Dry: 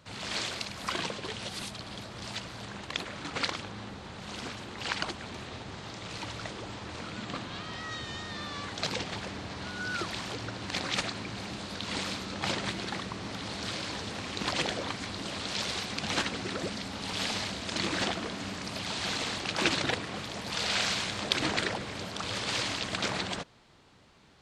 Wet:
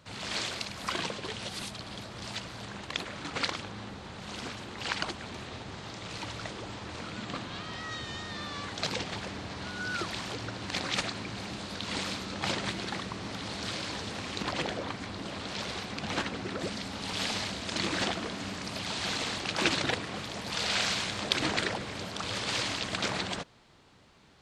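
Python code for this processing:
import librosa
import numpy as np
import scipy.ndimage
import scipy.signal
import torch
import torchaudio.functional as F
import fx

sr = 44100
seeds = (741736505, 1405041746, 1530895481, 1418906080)

y = fx.high_shelf(x, sr, hz=2800.0, db=-7.5, at=(14.42, 16.61))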